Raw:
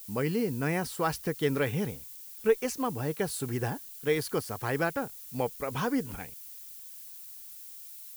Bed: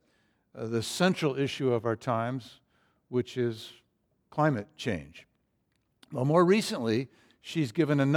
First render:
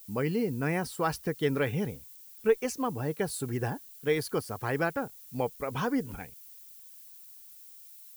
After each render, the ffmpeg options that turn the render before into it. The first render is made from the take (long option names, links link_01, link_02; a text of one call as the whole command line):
ffmpeg -i in.wav -af "afftdn=noise_reduction=6:noise_floor=-46" out.wav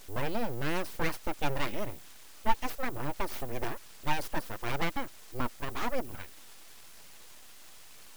ffmpeg -i in.wav -af "aeval=exprs='abs(val(0))':channel_layout=same,aphaser=in_gain=1:out_gain=1:delay=4.4:decay=0.21:speed=1:type=triangular" out.wav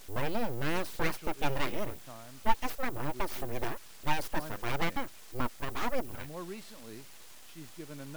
ffmpeg -i in.wav -i bed.wav -filter_complex "[1:a]volume=-20dB[link_01];[0:a][link_01]amix=inputs=2:normalize=0" out.wav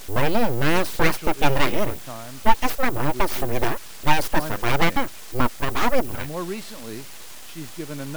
ffmpeg -i in.wav -af "volume=12dB,alimiter=limit=-2dB:level=0:latency=1" out.wav